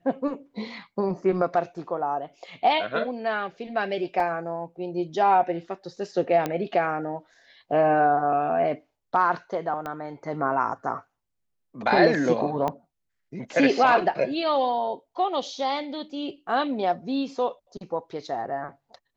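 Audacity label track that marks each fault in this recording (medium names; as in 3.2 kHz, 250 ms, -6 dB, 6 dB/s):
4.200000	4.200000	dropout 3 ms
6.460000	6.460000	pop -13 dBFS
9.860000	9.860000	pop -20 dBFS
12.680000	12.680000	pop -15 dBFS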